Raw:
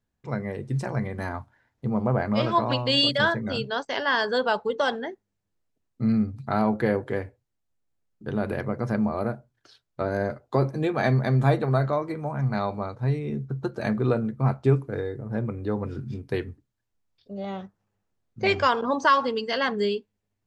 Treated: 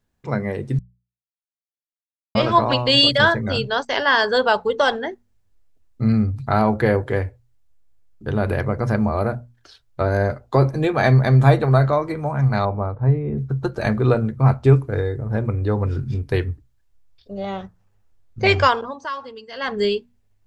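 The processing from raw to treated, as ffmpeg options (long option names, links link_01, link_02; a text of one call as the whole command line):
ffmpeg -i in.wav -filter_complex "[0:a]asettb=1/sr,asplit=3[link_01][link_02][link_03];[link_01]atrim=end=12.654[link_04];[link_02]atrim=start=12.65:end=13.38,asetpts=PTS-STARTPTS,afade=type=in:duration=0.004:curve=qsin,afade=type=out:start_time=0.726:duration=0.004:curve=qsin,lowpass=1200[link_05];[link_03]atrim=start=13.376[link_06];[link_04][link_05]acrossfade=duration=0.004:curve1=hsin:curve2=qsin[link_07];[link_07][link_06]acrossfade=duration=0.004:curve1=qsin:curve2=hsin,asplit=5[link_08][link_09][link_10][link_11][link_12];[link_08]atrim=end=0.79,asetpts=PTS-STARTPTS,afade=type=out:start_time=0.786:duration=0.004:curve=hsin[link_13];[link_09]atrim=start=0.79:end=2.35,asetpts=PTS-STARTPTS,volume=0[link_14];[link_10]atrim=start=2.35:end=18.94,asetpts=PTS-STARTPTS,afade=type=in:duration=0.004:curve=hsin,afade=type=out:start_time=16.28:duration=0.31:silence=0.158489[link_15];[link_11]atrim=start=18.94:end=19.54,asetpts=PTS-STARTPTS,volume=-16dB[link_16];[link_12]atrim=start=19.54,asetpts=PTS-STARTPTS,afade=type=in:duration=0.31:silence=0.158489[link_17];[link_13][link_14][link_15][link_16][link_17]concat=n=5:v=0:a=1,bandreject=frequency=60:width_type=h:width=6,bandreject=frequency=120:width_type=h:width=6,bandreject=frequency=180:width_type=h:width=6,bandreject=frequency=240:width_type=h:width=6,asubboost=boost=6:cutoff=76,volume=7dB" out.wav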